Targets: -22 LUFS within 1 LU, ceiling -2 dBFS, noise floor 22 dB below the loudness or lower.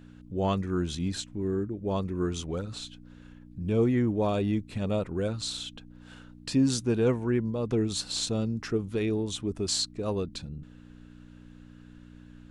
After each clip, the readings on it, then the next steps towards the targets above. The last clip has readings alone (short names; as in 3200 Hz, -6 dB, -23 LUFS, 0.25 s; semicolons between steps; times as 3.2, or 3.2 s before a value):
hum 60 Hz; harmonics up to 300 Hz; hum level -50 dBFS; loudness -29.5 LUFS; peak -14.0 dBFS; loudness target -22.0 LUFS
-> de-hum 60 Hz, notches 5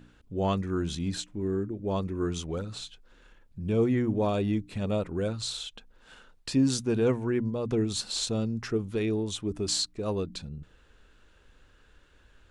hum none; loudness -29.5 LUFS; peak -15.0 dBFS; loudness target -22.0 LUFS
-> gain +7.5 dB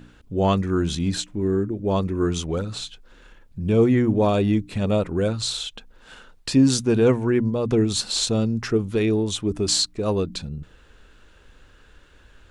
loudness -22.0 LUFS; peak -7.5 dBFS; noise floor -53 dBFS